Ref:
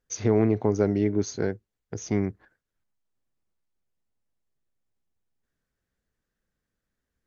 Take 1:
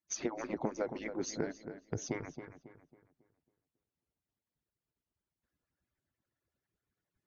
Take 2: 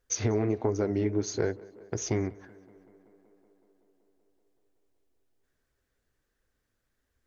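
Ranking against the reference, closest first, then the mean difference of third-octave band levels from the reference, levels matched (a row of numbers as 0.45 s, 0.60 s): 2, 1; 3.5 dB, 8.0 dB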